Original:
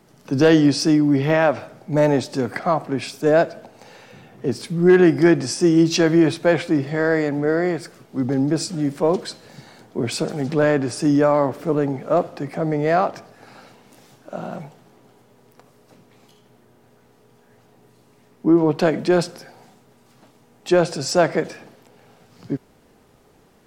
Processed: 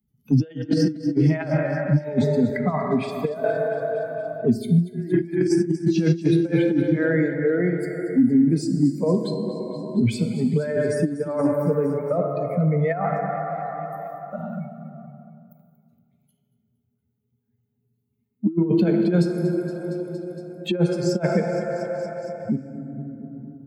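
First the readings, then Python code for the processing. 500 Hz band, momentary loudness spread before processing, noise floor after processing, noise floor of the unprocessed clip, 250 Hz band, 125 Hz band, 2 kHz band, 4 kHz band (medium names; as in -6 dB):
-4.0 dB, 15 LU, -73 dBFS, -55 dBFS, -1.5 dB, +2.5 dB, -6.5 dB, -9.0 dB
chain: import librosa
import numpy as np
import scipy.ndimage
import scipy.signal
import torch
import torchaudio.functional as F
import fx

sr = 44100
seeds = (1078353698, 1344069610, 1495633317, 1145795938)

p1 = fx.bin_expand(x, sr, power=2.0)
p2 = fx.high_shelf(p1, sr, hz=3600.0, db=-5.0)
p3 = fx.rev_plate(p2, sr, seeds[0], rt60_s=2.6, hf_ratio=0.5, predelay_ms=0, drr_db=4.5)
p4 = fx.over_compress(p3, sr, threshold_db=-24.0, ratio=-0.5)
p5 = scipy.signal.sosfilt(scipy.signal.butter(2, 58.0, 'highpass', fs=sr, output='sos'), p4)
p6 = fx.noise_reduce_blind(p5, sr, reduce_db=12)
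p7 = fx.graphic_eq_10(p6, sr, hz=(125, 250, 1000), db=(11, 9, -8))
p8 = p7 + fx.echo_feedback(p7, sr, ms=232, feedback_pct=53, wet_db=-17.5, dry=0)
y = fx.band_squash(p8, sr, depth_pct=70)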